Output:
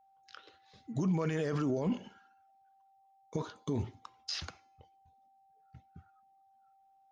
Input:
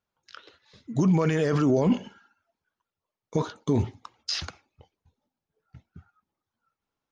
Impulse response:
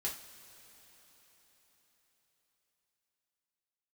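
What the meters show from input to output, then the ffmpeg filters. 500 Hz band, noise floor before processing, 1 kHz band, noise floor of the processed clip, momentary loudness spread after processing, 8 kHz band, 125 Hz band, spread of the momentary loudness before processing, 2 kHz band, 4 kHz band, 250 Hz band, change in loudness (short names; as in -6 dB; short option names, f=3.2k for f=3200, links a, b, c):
-10.0 dB, under -85 dBFS, -9.0 dB, -67 dBFS, 22 LU, n/a, -9.5 dB, 12 LU, -8.5 dB, -8.0 dB, -9.5 dB, -10.0 dB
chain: -af "alimiter=limit=-18dB:level=0:latency=1:release=229,aeval=exprs='val(0)+0.00126*sin(2*PI*780*n/s)':c=same,bandreject=f=342.3:t=h:w=4,bandreject=f=684.6:t=h:w=4,bandreject=f=1.0269k:t=h:w=4,bandreject=f=1.3692k:t=h:w=4,bandreject=f=1.7115k:t=h:w=4,bandreject=f=2.0538k:t=h:w=4,bandreject=f=2.3961k:t=h:w=4,bandreject=f=2.7384k:t=h:w=4,bandreject=f=3.0807k:t=h:w=4,bandreject=f=3.423k:t=h:w=4,bandreject=f=3.7653k:t=h:w=4,bandreject=f=4.1076k:t=h:w=4,bandreject=f=4.4499k:t=h:w=4,bandreject=f=4.7922k:t=h:w=4,bandreject=f=5.1345k:t=h:w=4,bandreject=f=5.4768k:t=h:w=4,bandreject=f=5.8191k:t=h:w=4,bandreject=f=6.1614k:t=h:w=4,bandreject=f=6.5037k:t=h:w=4,bandreject=f=6.846k:t=h:w=4,bandreject=f=7.1883k:t=h:w=4,bandreject=f=7.5306k:t=h:w=4,bandreject=f=7.8729k:t=h:w=4,bandreject=f=8.2152k:t=h:w=4,bandreject=f=8.5575k:t=h:w=4,bandreject=f=8.8998k:t=h:w=4,bandreject=f=9.2421k:t=h:w=4,bandreject=f=9.5844k:t=h:w=4,bandreject=f=9.9267k:t=h:w=4,bandreject=f=10.269k:t=h:w=4,bandreject=f=10.6113k:t=h:w=4,bandreject=f=10.9536k:t=h:w=4,bandreject=f=11.2959k:t=h:w=4,volume=-6dB"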